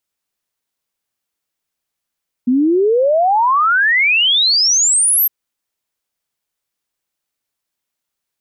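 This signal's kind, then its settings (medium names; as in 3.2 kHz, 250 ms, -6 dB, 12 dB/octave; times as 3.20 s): log sweep 240 Hz -> 13 kHz 2.81 s -10 dBFS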